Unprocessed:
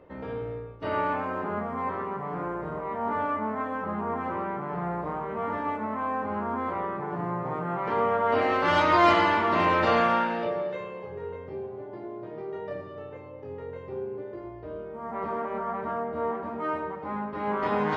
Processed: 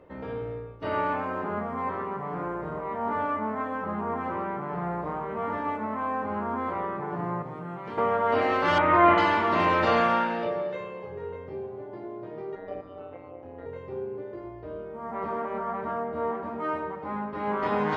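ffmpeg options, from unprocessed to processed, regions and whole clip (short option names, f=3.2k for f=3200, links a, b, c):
-filter_complex "[0:a]asettb=1/sr,asplit=3[a][b][c];[a]atrim=end=7.424[d];[b]atrim=start=7.42:end=7.98,asetpts=PTS-STARTPTS,afade=t=in:d=0.004:c=qsin,afade=t=out:st=0.556:d=0.004:c=qsin,acrossover=split=300|3000[e][f][g];[f]acompressor=threshold=-46dB:ratio=2:attack=3.2:release=140:knee=2.83:detection=peak[h];[e][h][g]amix=inputs=3:normalize=0,bass=f=250:g=-4,treble=f=4k:g=-3[i];[c]atrim=start=7.976[j];[d][i]acrossfade=d=0.004:c1=hsin:c2=qsin[k];[k][j]acrossfade=d=0.004:c1=qsin:c2=hsin,asettb=1/sr,asplit=3[l][m][n];[l]atrim=end=8.784[o];[m]atrim=start=8.78:end=9.18,asetpts=PTS-STARTPTS,afade=t=in:d=0.004:c=qsin,afade=t=out:st=0.396:d=0.004:c=qsin,lowpass=f=2.4k:w=0.5412,lowpass=f=2.4k:w=1.3066,asplit=2[p][q];[q]adelay=46,volume=-12dB[r];[p][r]amix=inputs=2:normalize=0,atrim=end_sample=17640[s];[n]atrim=start=9.176[t];[o][s]acrossfade=d=0.004:c1=hsin:c2=qsin[u];[u][t]acrossfade=d=0.004:c1=qsin:c2=hsin,asettb=1/sr,asplit=3[v][w][x];[v]atrim=end=12.554[y];[w]atrim=start=12.55:end=13.66,asetpts=PTS-STARTPTS,afade=t=in:d=0.004:c=qsin,afade=t=out:st=1.106:d=0.004:c=qsin,highshelf=f=4k:g=-10.5,aecho=1:1:3.7:0.77,atrim=end_sample=48951,tremolo=f=180:d=0.824[z];[x]atrim=start=13.656[aa];[y][z]acrossfade=d=0.004:c1=hsin:c2=qsin[ab];[ab][aa]acrossfade=d=0.004:c1=qsin:c2=hsin"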